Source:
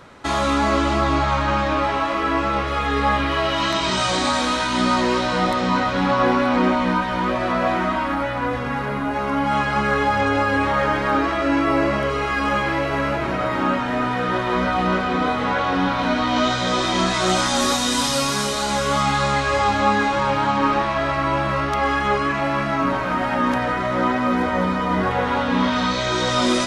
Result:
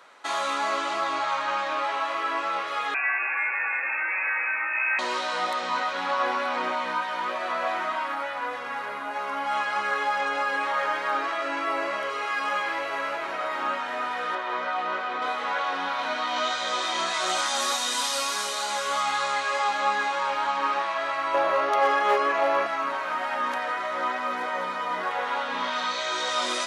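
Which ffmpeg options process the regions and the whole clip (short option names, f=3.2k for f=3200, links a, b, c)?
-filter_complex "[0:a]asettb=1/sr,asplit=3[a][b][c];[a]atrim=end=2.944[d];[b]atrim=start=2.94:end=4.99,asetpts=PTS-STARTPTS,afade=t=in:d=0.004:c=qsin,afade=t=out:st=2.046:d=0.004:c=qsin,asoftclip=type=hard:threshold=-16dB,highpass=140,lowpass=f=2.4k:t=q:w=0.5098,lowpass=f=2.4k:t=q:w=0.6013,lowpass=f=2.4k:t=q:w=0.9,lowpass=f=2.4k:t=q:w=2.563,afreqshift=-2800[e];[c]atrim=start=4.986[f];[d][e]acrossfade=d=0.004:c1=hsin:c2=qsin[g];[g][f]acrossfade=d=0.004:c1=qsin:c2=hsin,asettb=1/sr,asplit=3[h][i][j];[h]atrim=end=14.354[k];[i]atrim=start=14.35:end=15.22,asetpts=PTS-STARTPTS,afade=t=in:d=0.004:c=qsin,afade=t=out:st=0.866:d=0.004:c=qsin,highpass=200,aemphasis=mode=reproduction:type=50kf[l];[j]atrim=start=15.216[m];[k][l]acrossfade=d=0.004:c1=hsin:c2=qsin[n];[n][m]acrossfade=d=0.004:c1=qsin:c2=hsin,asettb=1/sr,asplit=3[o][p][q];[o]atrim=end=21.344[r];[p]atrim=start=21.34:end=22.67,asetpts=PTS-STARTPTS,afade=t=in:d=0.004:c=qsin,afade=t=out:st=1.326:d=0.004:c=qsin,equalizer=f=480:w=0.85:g=12.5,bandreject=f=7.9k:w=8.6,asoftclip=type=hard:threshold=-6.5dB[s];[q]atrim=start=22.666[t];[r][s]acrossfade=d=0.004:c1=hsin:c2=qsin[u];[u][t]acrossfade=d=0.004:c1=qsin:c2=hsin,highpass=670,bandreject=f=5.2k:w=24,volume=-4.5dB"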